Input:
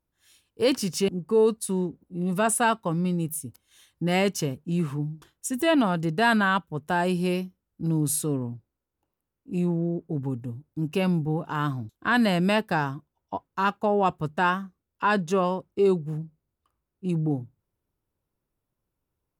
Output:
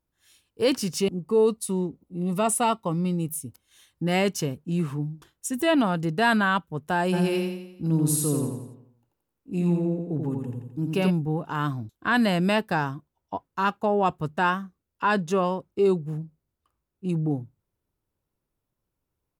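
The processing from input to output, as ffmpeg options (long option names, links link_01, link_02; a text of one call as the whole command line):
ffmpeg -i in.wav -filter_complex "[0:a]asettb=1/sr,asplit=3[link_01][link_02][link_03];[link_01]atrim=end=1.004[link_04];[link_02]atrim=start=1:end=3.46,asetpts=PTS-STARTPTS,afade=type=in:duration=0.004:curve=qsin,afade=type=out:start_time=2.456:duration=0.004:curve=qsin,asuperstop=centerf=1600:order=4:qfactor=4.5[link_05];[link_03]atrim=start=3.456[link_06];[link_04][link_05]acrossfade=duration=0.004:curve1=hsin:curve2=qsin[link_07];[link_07][link_06]acrossfade=duration=0.004:curve1=qsin:curve2=hsin,asplit=3[link_08][link_09][link_10];[link_08]afade=type=out:start_time=7.12:duration=0.02[link_11];[link_09]aecho=1:1:86|172|258|344|430|516:0.631|0.303|0.145|0.0698|0.0335|0.0161,afade=type=in:start_time=7.12:duration=0.02,afade=type=out:start_time=11.09:duration=0.02[link_12];[link_10]afade=type=in:start_time=11.09:duration=0.02[link_13];[link_11][link_12][link_13]amix=inputs=3:normalize=0" out.wav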